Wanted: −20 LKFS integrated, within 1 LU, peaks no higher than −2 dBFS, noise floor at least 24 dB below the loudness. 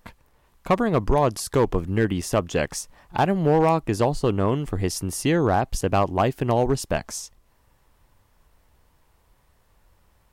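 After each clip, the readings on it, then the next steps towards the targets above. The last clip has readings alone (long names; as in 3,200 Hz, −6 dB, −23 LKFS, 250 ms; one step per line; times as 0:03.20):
share of clipped samples 0.7%; peaks flattened at −12.0 dBFS; number of dropouts 3; longest dropout 4.9 ms; integrated loudness −23.0 LKFS; sample peak −12.0 dBFS; target loudness −20.0 LKFS
→ clipped peaks rebuilt −12 dBFS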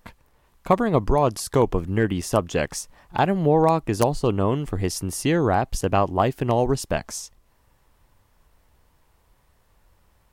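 share of clipped samples 0.0%; number of dropouts 3; longest dropout 4.9 ms
→ repair the gap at 0:02.22/0:03.18/0:05.81, 4.9 ms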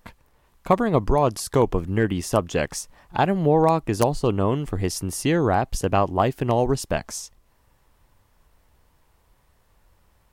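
number of dropouts 0; integrated loudness −22.5 LKFS; sample peak −3.0 dBFS; target loudness −20.0 LKFS
→ level +2.5 dB
brickwall limiter −2 dBFS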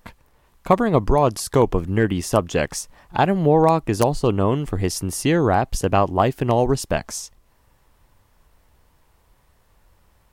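integrated loudness −20.0 LKFS; sample peak −2.0 dBFS; background noise floor −60 dBFS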